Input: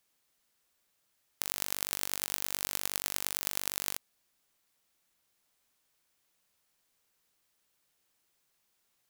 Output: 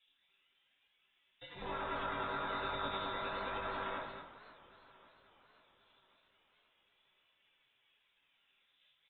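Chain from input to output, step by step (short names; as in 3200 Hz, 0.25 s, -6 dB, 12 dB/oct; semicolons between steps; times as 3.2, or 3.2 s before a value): treble ducked by the level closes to 1300 Hz, closed at -42.5 dBFS; HPF 200 Hz 12 dB/oct; spectral gate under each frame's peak -10 dB weak; low-pass opened by the level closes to 1200 Hz, open at -60 dBFS; limiter -40.5 dBFS, peak gain reduction 9 dB; phaser 0.34 Hz, delay 4.2 ms, feedback 59%; echo 0.211 s -8.5 dB; reverb, pre-delay 3 ms, DRR -7 dB; inverted band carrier 3700 Hz; flange 1.1 Hz, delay 1.1 ms, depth 7.9 ms, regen +68%; warbling echo 0.542 s, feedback 55%, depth 219 cents, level -19 dB; gain +18 dB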